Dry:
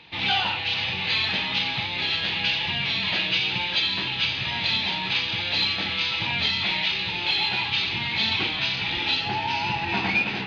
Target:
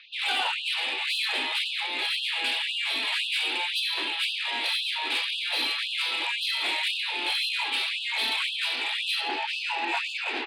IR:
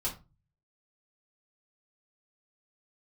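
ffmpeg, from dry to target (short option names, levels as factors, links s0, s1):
-filter_complex "[0:a]highpass=120,lowpass=5300,afftfilt=real='re*lt(hypot(re,im),0.447)':imag='im*lt(hypot(re,im),0.447)':win_size=1024:overlap=0.75,acrossover=split=470|1100[s0][s1][s2];[s0]aecho=1:1:62|124|186|248:0.376|0.135|0.0487|0.0175[s3];[s2]asoftclip=type=tanh:threshold=0.0794[s4];[s3][s1][s4]amix=inputs=3:normalize=0,afftfilt=real='re*gte(b*sr/1024,220*pow(2600/220,0.5+0.5*sin(2*PI*1.9*pts/sr)))':imag='im*gte(b*sr/1024,220*pow(2600/220,0.5+0.5*sin(2*PI*1.9*pts/sr)))':win_size=1024:overlap=0.75"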